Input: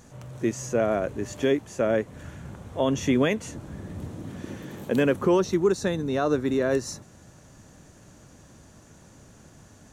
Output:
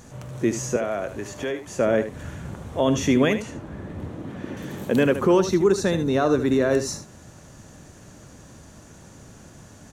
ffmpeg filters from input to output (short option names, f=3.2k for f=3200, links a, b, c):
-filter_complex "[0:a]asplit=2[a][b];[b]alimiter=limit=-19dB:level=0:latency=1,volume=-2.5dB[c];[a][c]amix=inputs=2:normalize=0,asettb=1/sr,asplit=3[d][e][f];[d]atrim=end=0.764[g];[e]atrim=start=0.76:end=1.67,asetpts=PTS-STARTPTS,afade=t=in:d=0.004:c=qsin,afade=t=out:st=0.906:d=0.004:c=qsin,acrossover=split=580|1900[h][i][j];[h]acompressor=threshold=-33dB:ratio=4[k];[i]acompressor=threshold=-28dB:ratio=4[l];[j]acompressor=threshold=-40dB:ratio=4[m];[k][l][m]amix=inputs=3:normalize=0[n];[f]atrim=start=1.666[o];[g][n]acrossfade=d=0.004:c1=hsin:c2=qsin[p];[p][o]acrossfade=d=0.004:c1=qsin:c2=hsin,asettb=1/sr,asplit=3[q][r][s];[q]atrim=end=3.424[t];[r]atrim=start=3.42:end=4.57,asetpts=PTS-STARTPTS,afade=t=in:d=0.004:c=qsin,afade=t=out:st=1.146:d=0.004:c=qsin,bass=f=250:g=-4,treble=f=4k:g=-12[u];[s]atrim=start=4.566[v];[t][u]acrossfade=d=0.004:c1=hsin:c2=qsin[w];[w][v]acrossfade=d=0.004:c1=qsin:c2=hsin,aecho=1:1:76:0.282"